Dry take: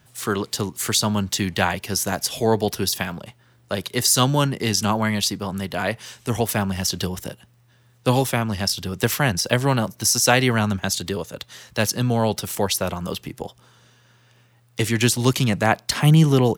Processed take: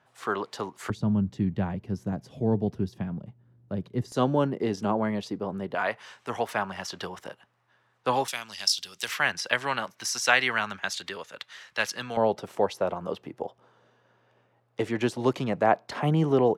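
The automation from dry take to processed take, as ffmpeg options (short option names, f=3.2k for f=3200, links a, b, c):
-af "asetnsamples=n=441:p=0,asendcmd='0.9 bandpass f 160;4.12 bandpass f 430;5.75 bandpass f 1100;8.28 bandpass f 4700;9.08 bandpass f 1800;12.17 bandpass f 590',bandpass=f=890:t=q:w=1:csg=0"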